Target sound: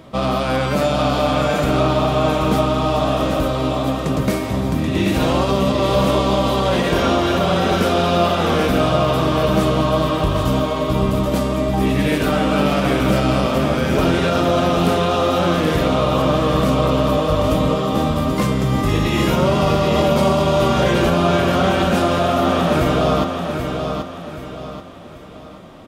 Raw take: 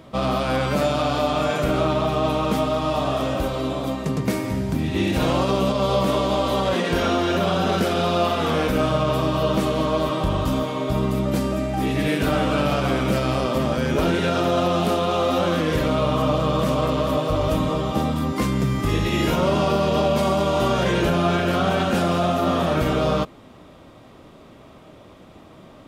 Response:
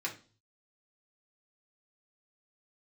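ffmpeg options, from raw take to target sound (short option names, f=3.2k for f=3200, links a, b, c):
-af "aecho=1:1:782|1564|2346|3128|3910:0.501|0.19|0.0724|0.0275|0.0105,volume=3dB"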